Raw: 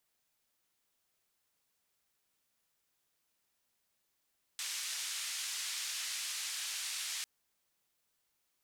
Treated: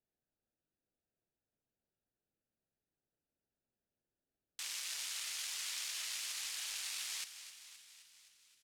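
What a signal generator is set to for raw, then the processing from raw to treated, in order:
band-limited noise 2,000–8,000 Hz, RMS −39.5 dBFS 2.65 s
adaptive Wiener filter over 41 samples
on a send: echo with shifted repeats 261 ms, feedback 64%, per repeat +33 Hz, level −12 dB

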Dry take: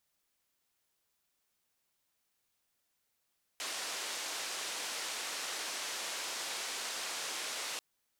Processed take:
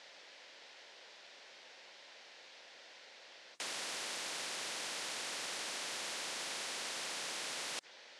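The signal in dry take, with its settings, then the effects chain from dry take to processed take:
band-limited noise 420–7,100 Hz, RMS −39.5 dBFS 4.19 s
loudspeaker in its box 440–4,900 Hz, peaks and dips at 540 Hz +8 dB, 1,200 Hz −7 dB, 1,900 Hz +3 dB
every bin compressed towards the loudest bin 4 to 1

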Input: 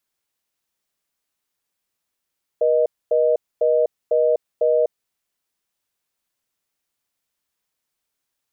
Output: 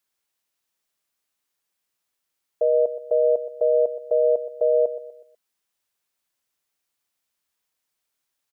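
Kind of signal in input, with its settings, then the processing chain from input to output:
call progress tone reorder tone, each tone −17 dBFS 2.43 s
low-shelf EQ 420 Hz −4.5 dB
repeating echo 123 ms, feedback 40%, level −13.5 dB

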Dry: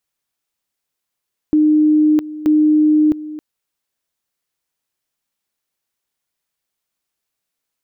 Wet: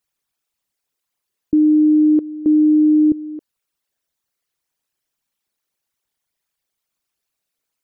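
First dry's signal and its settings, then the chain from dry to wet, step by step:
tone at two levels in turn 305 Hz −9 dBFS, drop 16.5 dB, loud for 0.66 s, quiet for 0.27 s, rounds 2
spectral envelope exaggerated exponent 2

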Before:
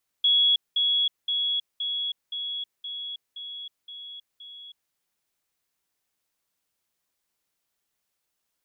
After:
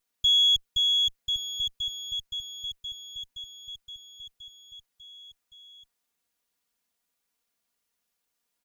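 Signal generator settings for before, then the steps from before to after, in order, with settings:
level staircase 3,350 Hz −17 dBFS, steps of −3 dB, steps 9, 0.32 s 0.20 s
lower of the sound and its delayed copy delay 4.2 ms
on a send: single-tap delay 1,116 ms −7 dB

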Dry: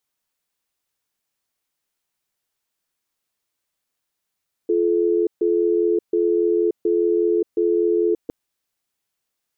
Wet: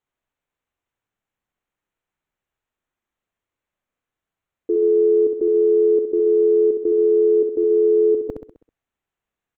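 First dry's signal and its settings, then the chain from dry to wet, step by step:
tone pair in a cadence 346 Hz, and 431 Hz, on 0.58 s, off 0.14 s, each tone −18.5 dBFS 3.61 s
adaptive Wiener filter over 9 samples
low-shelf EQ 81 Hz +8.5 dB
repeating echo 65 ms, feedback 50%, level −6 dB

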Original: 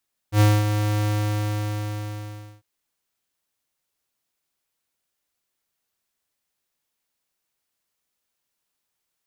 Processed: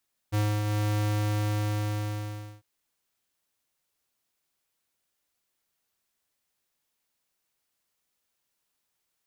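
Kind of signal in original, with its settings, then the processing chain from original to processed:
note with an ADSR envelope square 105 Hz, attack 84 ms, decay 231 ms, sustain −8 dB, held 0.73 s, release 1,570 ms −14 dBFS
downward compressor 6 to 1, threshold −27 dBFS

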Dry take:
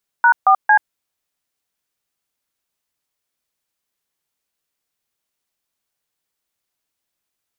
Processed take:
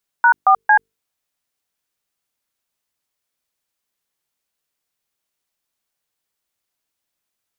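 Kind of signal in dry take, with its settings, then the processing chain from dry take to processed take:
touch tones "#4C", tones 83 ms, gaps 143 ms, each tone −10.5 dBFS
mains-hum notches 50/100/150/200/250/300/350/400/450 Hz

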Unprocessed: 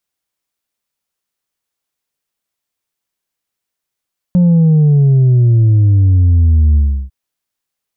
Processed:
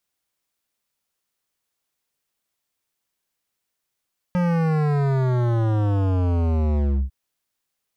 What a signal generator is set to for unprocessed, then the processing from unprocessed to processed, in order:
bass drop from 180 Hz, over 2.75 s, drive 2.5 dB, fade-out 0.34 s, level −6.5 dB
hard clipping −19.5 dBFS

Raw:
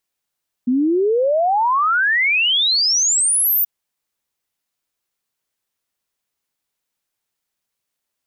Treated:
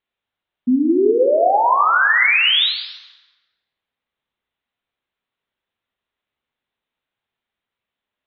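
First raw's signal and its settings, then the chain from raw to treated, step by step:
exponential sine sweep 240 Hz → 15,000 Hz 2.98 s −13.5 dBFS
Butterworth low-pass 3,800 Hz 72 dB per octave
dense smooth reverb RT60 1.4 s, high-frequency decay 0.65×, DRR 2.5 dB

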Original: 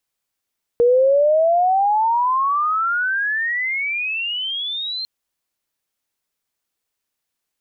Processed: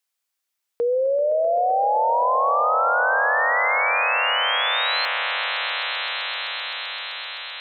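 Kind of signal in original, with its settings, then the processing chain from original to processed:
glide logarithmic 470 Hz → 4,200 Hz −10.5 dBFS → −23.5 dBFS 4.25 s
high-pass filter 950 Hz 6 dB per octave
echo that builds up and dies away 129 ms, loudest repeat 8, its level −13 dB

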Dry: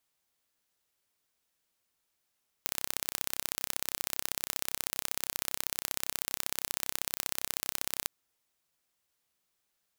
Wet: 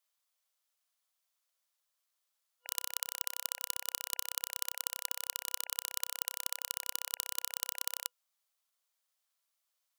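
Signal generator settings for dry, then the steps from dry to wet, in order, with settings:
impulse train 32.6 per second, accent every 2, −3 dBFS 5.43 s
brick-wall band-stop 210–1,700 Hz
ring modulation 1,200 Hz

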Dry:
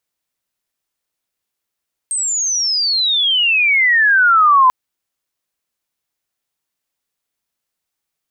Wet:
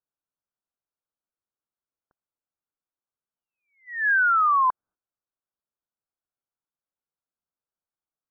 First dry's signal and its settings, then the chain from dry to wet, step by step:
glide logarithmic 8,500 Hz → 1,000 Hz −16.5 dBFS → −6.5 dBFS 2.59 s
Butterworth low-pass 1,600 Hz 96 dB per octave
noise gate −44 dBFS, range −11 dB
downward compressor 6 to 1, threshold −19 dBFS

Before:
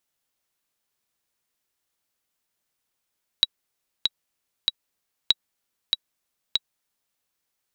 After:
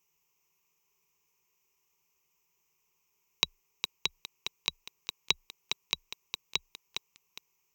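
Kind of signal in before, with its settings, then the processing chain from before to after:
click track 96 BPM, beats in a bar 3, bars 2, 3,870 Hz, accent 4 dB −3.5 dBFS
EQ curve with evenly spaced ripples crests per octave 0.76, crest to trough 17 dB
feedback echo at a low word length 410 ms, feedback 35%, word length 7 bits, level −6 dB

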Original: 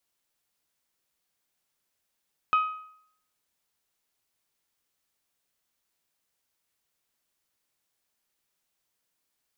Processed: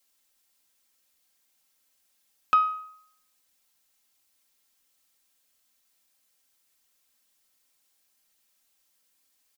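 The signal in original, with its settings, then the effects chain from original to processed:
struck metal bell, lowest mode 1,260 Hz, decay 0.66 s, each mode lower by 11.5 dB, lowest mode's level −17 dB
high-shelf EQ 2,400 Hz +7.5 dB
comb filter 3.8 ms, depth 79%

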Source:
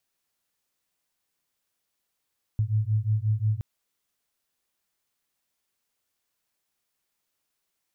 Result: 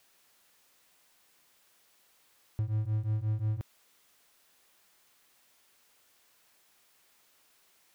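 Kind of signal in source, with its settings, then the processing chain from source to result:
two tones that beat 105 Hz, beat 5.6 Hz, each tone −25 dBFS 1.02 s
low-shelf EQ 220 Hz −7.5 dB
power curve on the samples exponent 0.7
bass and treble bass −1 dB, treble −3 dB

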